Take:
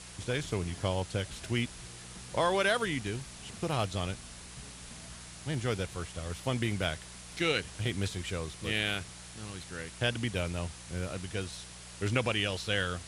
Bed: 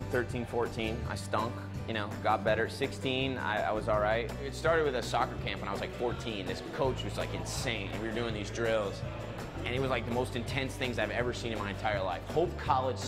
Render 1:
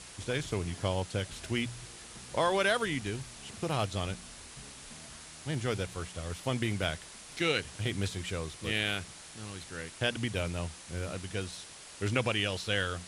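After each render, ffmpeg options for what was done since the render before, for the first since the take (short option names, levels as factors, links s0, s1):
-af "bandreject=f=60:t=h:w=4,bandreject=f=120:t=h:w=4,bandreject=f=180:t=h:w=4"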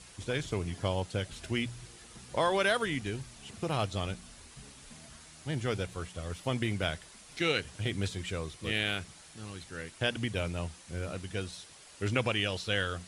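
-af "afftdn=nr=6:nf=-49"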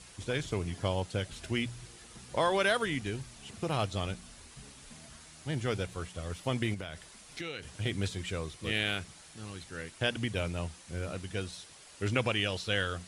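-filter_complex "[0:a]asettb=1/sr,asplit=3[s0][s1][s2];[s0]atrim=end=6.744[s3];[s1]atrim=start=6.74:end=7.63,asetpts=PTS-STARTPTS,afade=t=in:d=0.004:c=qsin,afade=t=out:st=0.886:d=0.004:c=qsin,acompressor=threshold=0.0178:ratio=12:attack=3.2:release=140:knee=1:detection=peak[s4];[s2]atrim=start=7.626[s5];[s3][s4]acrossfade=d=0.004:c1=hsin:c2=qsin[s6];[s6][s5]acrossfade=d=0.004:c1=qsin:c2=hsin"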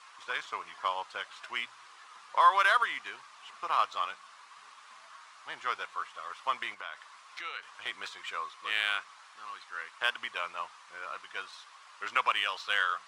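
-af "adynamicsmooth=sensitivity=4:basefreq=4900,highpass=f=1100:t=q:w=4.9"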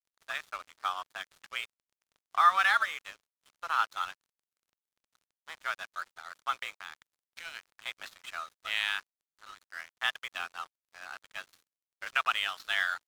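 -af "afreqshift=170,aeval=exprs='sgn(val(0))*max(abs(val(0))-0.00631,0)':c=same"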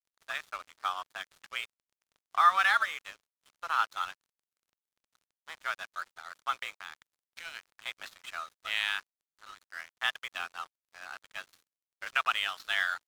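-af anull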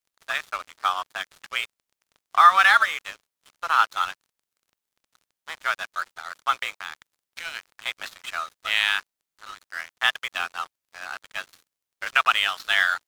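-af "volume=2.82,alimiter=limit=0.708:level=0:latency=1"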